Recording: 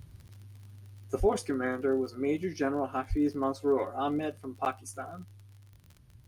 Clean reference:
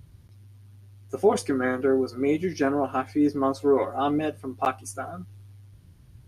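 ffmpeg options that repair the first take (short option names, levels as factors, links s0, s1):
-filter_complex "[0:a]adeclick=t=4,asplit=3[s0][s1][s2];[s0]afade=t=out:st=1.19:d=0.02[s3];[s1]highpass=f=140:w=0.5412,highpass=f=140:w=1.3066,afade=t=in:st=1.19:d=0.02,afade=t=out:st=1.31:d=0.02[s4];[s2]afade=t=in:st=1.31:d=0.02[s5];[s3][s4][s5]amix=inputs=3:normalize=0,asplit=3[s6][s7][s8];[s6]afade=t=out:st=3.09:d=0.02[s9];[s7]highpass=f=140:w=0.5412,highpass=f=140:w=1.3066,afade=t=in:st=3.09:d=0.02,afade=t=out:st=3.21:d=0.02[s10];[s8]afade=t=in:st=3.21:d=0.02[s11];[s9][s10][s11]amix=inputs=3:normalize=0,asetnsamples=n=441:p=0,asendcmd='1.2 volume volume 6dB',volume=1"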